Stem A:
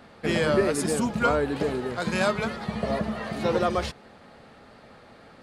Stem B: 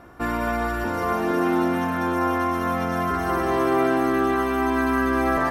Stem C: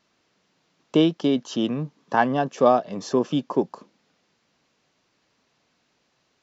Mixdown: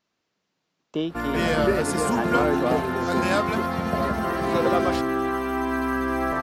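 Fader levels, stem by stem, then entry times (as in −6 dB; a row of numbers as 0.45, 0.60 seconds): 0.0, −3.5, −9.0 decibels; 1.10, 0.95, 0.00 seconds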